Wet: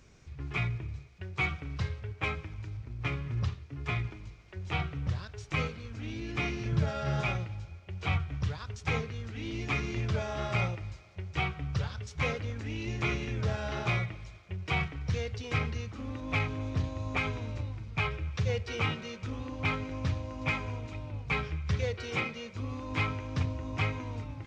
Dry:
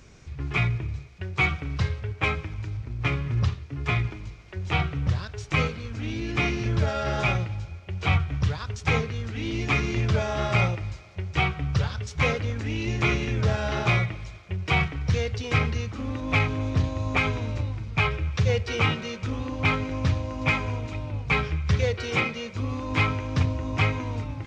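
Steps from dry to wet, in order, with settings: 6.72–7.21 s: peaking EQ 150 Hz +13.5 dB 0.37 oct; trim -7.5 dB

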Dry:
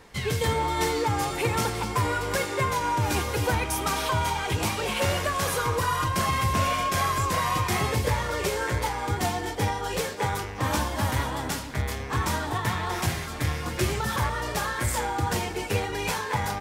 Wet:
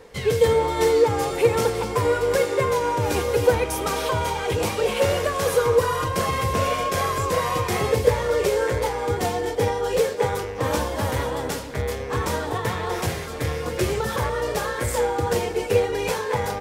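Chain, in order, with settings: peaking EQ 480 Hz +13.5 dB 0.5 oct

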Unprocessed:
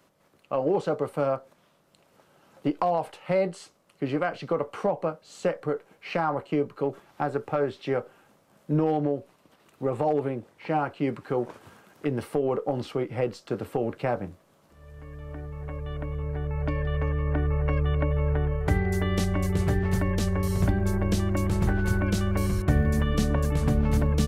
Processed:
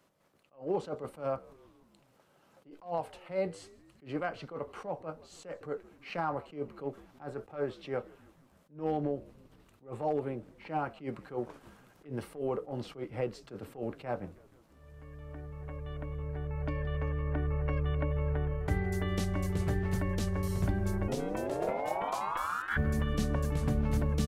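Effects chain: 21.07–22.76 s: ring modulator 310 Hz -> 1.6 kHz; frequency-shifting echo 159 ms, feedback 64%, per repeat -83 Hz, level -24 dB; attacks held to a fixed rise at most 200 dB/s; trim -6.5 dB

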